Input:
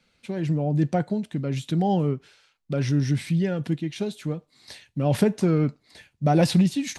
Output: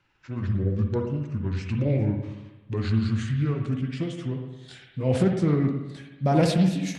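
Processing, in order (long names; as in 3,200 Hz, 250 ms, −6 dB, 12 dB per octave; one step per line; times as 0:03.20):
pitch glide at a constant tempo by −8 semitones ending unshifted
spring reverb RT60 1.1 s, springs 54/58 ms, chirp 75 ms, DRR 3.5 dB
highs frequency-modulated by the lows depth 0.18 ms
level −1.5 dB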